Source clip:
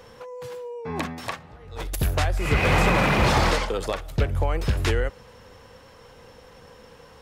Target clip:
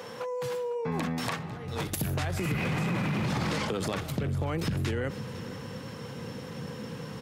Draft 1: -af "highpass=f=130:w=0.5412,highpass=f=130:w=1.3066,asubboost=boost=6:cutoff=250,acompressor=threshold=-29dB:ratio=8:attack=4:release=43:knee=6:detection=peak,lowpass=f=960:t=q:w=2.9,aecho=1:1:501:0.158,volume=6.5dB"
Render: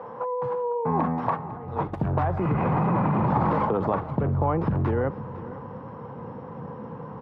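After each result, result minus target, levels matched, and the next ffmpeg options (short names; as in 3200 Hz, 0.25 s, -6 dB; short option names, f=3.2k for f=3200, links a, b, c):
compressor: peak gain reduction -5.5 dB; 1000 Hz band +5.0 dB
-af "highpass=f=130:w=0.5412,highpass=f=130:w=1.3066,asubboost=boost=6:cutoff=250,acompressor=threshold=-35dB:ratio=8:attack=4:release=43:knee=6:detection=peak,lowpass=f=960:t=q:w=2.9,aecho=1:1:501:0.158,volume=6.5dB"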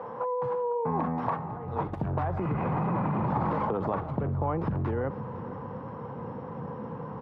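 1000 Hz band +6.0 dB
-af "highpass=f=130:w=0.5412,highpass=f=130:w=1.3066,asubboost=boost=6:cutoff=250,acompressor=threshold=-35dB:ratio=8:attack=4:release=43:knee=6:detection=peak,aecho=1:1:501:0.158,volume=6.5dB"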